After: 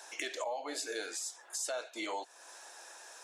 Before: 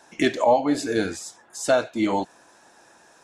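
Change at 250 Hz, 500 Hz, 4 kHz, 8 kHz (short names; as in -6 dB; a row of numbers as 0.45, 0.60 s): -23.5, -18.0, -7.5, -3.5 dB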